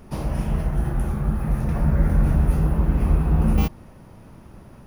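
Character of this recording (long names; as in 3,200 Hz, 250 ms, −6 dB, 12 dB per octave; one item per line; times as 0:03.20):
background noise floor −45 dBFS
spectral slope −8.5 dB per octave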